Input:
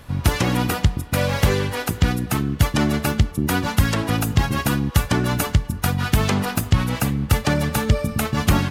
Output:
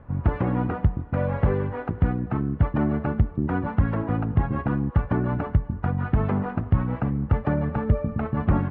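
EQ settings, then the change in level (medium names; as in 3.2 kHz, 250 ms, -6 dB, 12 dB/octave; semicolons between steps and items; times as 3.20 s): Bessel low-pass 1.1 kHz, order 4; -3.0 dB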